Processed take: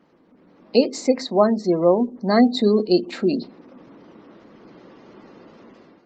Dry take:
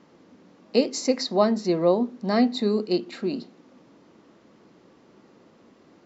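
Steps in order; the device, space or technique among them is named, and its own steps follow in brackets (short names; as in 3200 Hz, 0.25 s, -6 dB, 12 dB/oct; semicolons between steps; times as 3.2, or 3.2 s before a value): 0.82–2.24 dynamic EQ 5200 Hz, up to -6 dB, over -44 dBFS, Q 1.8; noise-suppressed video call (HPF 110 Hz 6 dB/oct; spectral gate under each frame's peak -30 dB strong; AGC gain up to 11.5 dB; gain -2 dB; Opus 20 kbps 48000 Hz)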